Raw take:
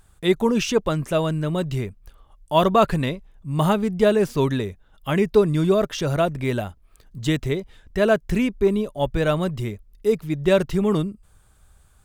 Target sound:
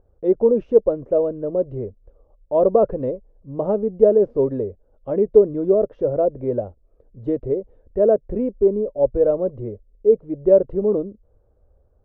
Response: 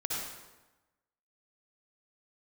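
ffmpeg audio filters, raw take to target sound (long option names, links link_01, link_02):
-af "lowpass=frequency=520:width_type=q:width=4.8,equalizer=frequency=160:width=4.3:gain=-13.5,volume=-3.5dB"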